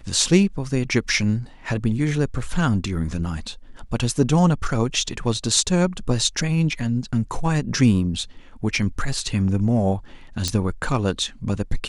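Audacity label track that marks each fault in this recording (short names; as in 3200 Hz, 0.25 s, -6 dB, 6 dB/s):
10.480000	10.480000	pop -8 dBFS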